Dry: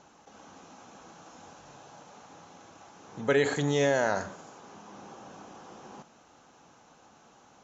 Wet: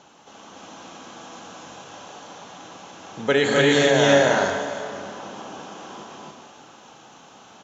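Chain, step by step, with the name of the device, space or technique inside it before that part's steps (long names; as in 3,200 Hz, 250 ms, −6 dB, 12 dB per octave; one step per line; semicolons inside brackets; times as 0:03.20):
stadium PA (high-pass filter 120 Hz 6 dB per octave; parametric band 3,200 Hz +7 dB 0.54 octaves; loudspeakers that aren't time-aligned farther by 87 metres −3 dB, 98 metres 0 dB; convolution reverb RT60 2.4 s, pre-delay 65 ms, DRR 5.5 dB)
level +5 dB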